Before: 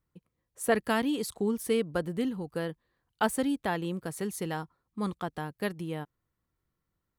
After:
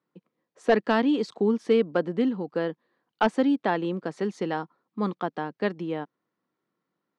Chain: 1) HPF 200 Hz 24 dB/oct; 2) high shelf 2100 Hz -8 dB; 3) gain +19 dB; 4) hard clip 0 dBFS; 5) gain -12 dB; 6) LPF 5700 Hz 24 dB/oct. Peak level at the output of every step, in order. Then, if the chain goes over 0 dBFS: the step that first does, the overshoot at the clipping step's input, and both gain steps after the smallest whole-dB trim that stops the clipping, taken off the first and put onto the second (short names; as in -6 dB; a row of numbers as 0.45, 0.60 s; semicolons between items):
-10.5, -13.0, +6.0, 0.0, -12.0, -11.5 dBFS; step 3, 6.0 dB; step 3 +13 dB, step 5 -6 dB